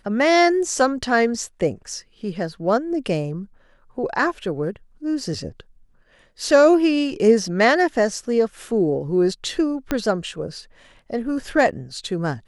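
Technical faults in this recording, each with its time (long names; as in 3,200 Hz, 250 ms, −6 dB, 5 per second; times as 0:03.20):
0:09.91: click −8 dBFS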